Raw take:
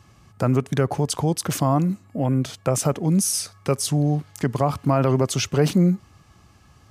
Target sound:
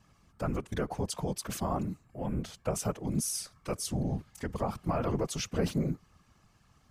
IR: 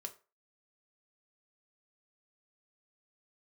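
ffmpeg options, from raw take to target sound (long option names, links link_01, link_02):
-af "equalizer=frequency=260:width_type=o:width=0.99:gain=-4.5,afftfilt=real='hypot(re,im)*cos(2*PI*random(0))':imag='hypot(re,im)*sin(2*PI*random(1))':win_size=512:overlap=0.75,volume=-4.5dB"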